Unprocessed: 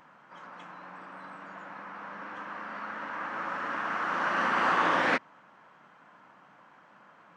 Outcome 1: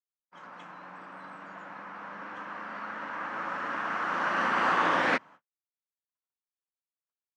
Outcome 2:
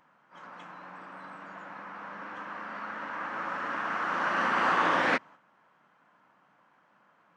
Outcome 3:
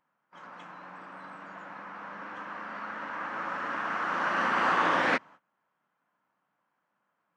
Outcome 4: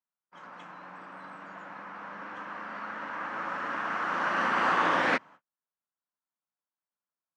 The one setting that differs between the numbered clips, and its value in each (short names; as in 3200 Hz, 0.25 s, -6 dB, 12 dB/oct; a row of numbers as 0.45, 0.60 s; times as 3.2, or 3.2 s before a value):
gate, range: -60, -8, -22, -45 dB